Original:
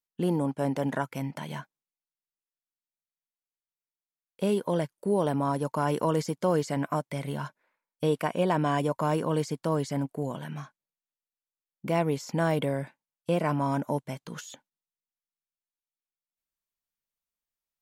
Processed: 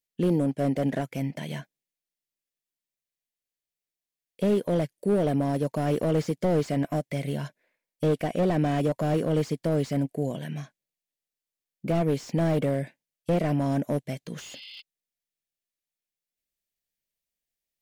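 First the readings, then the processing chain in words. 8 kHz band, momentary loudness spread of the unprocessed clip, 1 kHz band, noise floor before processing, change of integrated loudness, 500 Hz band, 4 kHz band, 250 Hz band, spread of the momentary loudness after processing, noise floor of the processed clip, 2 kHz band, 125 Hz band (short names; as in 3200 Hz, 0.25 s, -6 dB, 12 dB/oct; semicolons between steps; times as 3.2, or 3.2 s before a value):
-2.0 dB, 13 LU, -3.5 dB, under -85 dBFS, +2.0 dB, +2.0 dB, 0.0 dB, +3.0 dB, 14 LU, under -85 dBFS, -2.0 dB, +3.5 dB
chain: spectral repair 14.43–14.79, 2000–5200 Hz before; band shelf 1100 Hz -11.5 dB 1 oct; slew limiter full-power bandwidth 29 Hz; gain +3.5 dB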